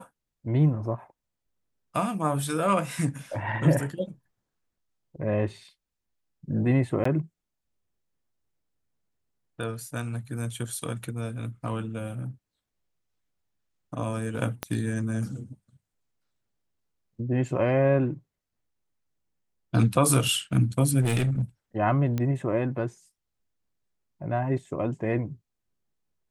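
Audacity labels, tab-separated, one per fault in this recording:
7.040000	7.050000	drop-out 14 ms
14.630000	14.630000	click −13 dBFS
21.010000	21.420000	clipping −20.5 dBFS
22.180000	22.180000	click −16 dBFS

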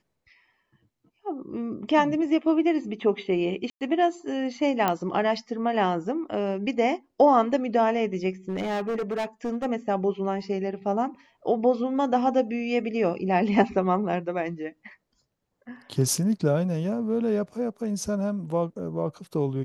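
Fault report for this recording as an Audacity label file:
3.700000	3.810000	drop-out 108 ms
4.880000	4.880000	click −10 dBFS
8.490000	9.660000	clipping −24.5 dBFS

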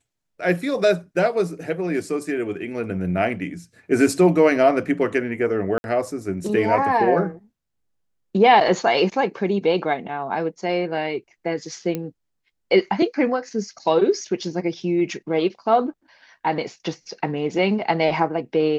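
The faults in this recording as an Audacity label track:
5.780000	5.840000	drop-out 61 ms
11.950000	11.950000	click −13 dBFS

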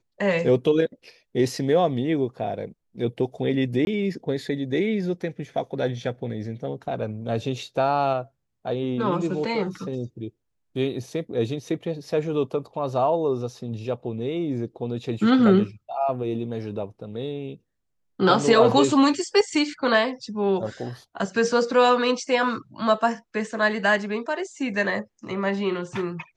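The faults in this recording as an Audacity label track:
3.850000	3.870000	drop-out 21 ms

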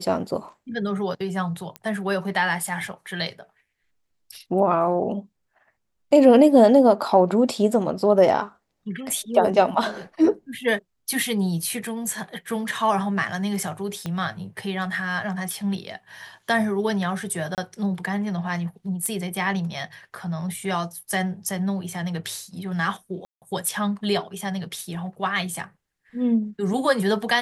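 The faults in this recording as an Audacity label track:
1.760000	1.760000	click −18 dBFS
14.060000	14.060000	click −16 dBFS
17.550000	17.580000	drop-out 28 ms
19.060000	19.060000	click −15 dBFS
23.250000	23.420000	drop-out 168 ms

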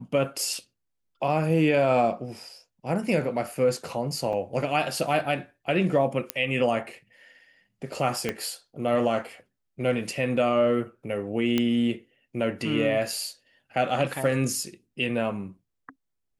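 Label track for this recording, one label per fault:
4.330000	4.330000	drop-out 2.3 ms
6.300000	6.300000	click −8 dBFS
8.290000	8.290000	click −13 dBFS
11.580000	11.580000	click −11 dBFS

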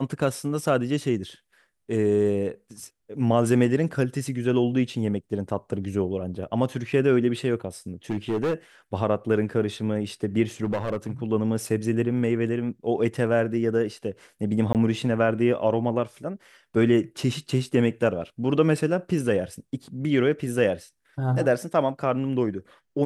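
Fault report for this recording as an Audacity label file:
8.100000	8.540000	clipping −21 dBFS
10.640000	11.110000	clipping −22 dBFS
14.730000	14.750000	drop-out 18 ms

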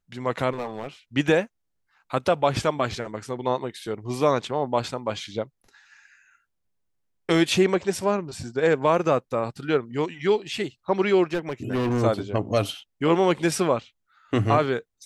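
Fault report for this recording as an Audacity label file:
0.520000	0.880000	clipping −25.5 dBFS
11.330000	12.030000	clipping −21 dBFS

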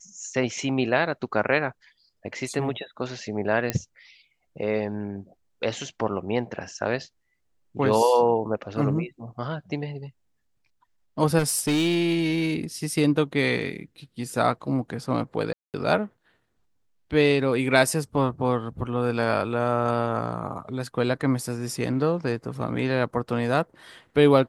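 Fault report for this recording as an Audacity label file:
3.700000	3.700000	click −9 dBFS
11.380000	12.560000	clipping −19 dBFS
15.530000	15.740000	drop-out 208 ms

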